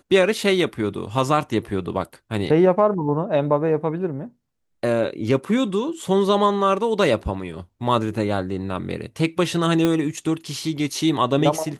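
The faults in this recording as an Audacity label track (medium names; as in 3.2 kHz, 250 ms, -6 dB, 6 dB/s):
9.850000	9.850000	pop -7 dBFS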